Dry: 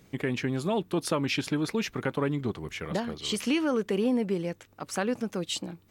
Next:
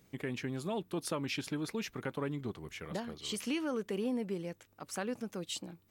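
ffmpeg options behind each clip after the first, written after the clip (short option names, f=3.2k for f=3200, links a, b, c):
-af "highshelf=f=8.6k:g=6.5,volume=-8.5dB"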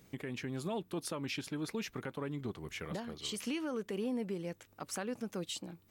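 -af "alimiter=level_in=8.5dB:limit=-24dB:level=0:latency=1:release=402,volume=-8.5dB,volume=3.5dB"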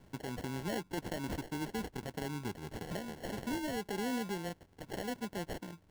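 -filter_complex "[0:a]acrossover=split=100|7100[a][b][c];[c]acompressor=mode=upward:threshold=-57dB:ratio=2.5[d];[a][b][d]amix=inputs=3:normalize=0,acrusher=samples=36:mix=1:aa=0.000001"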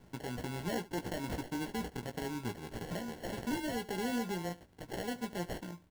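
-af "acrusher=bits=5:mode=log:mix=0:aa=0.000001,aecho=1:1:17|74:0.447|0.126"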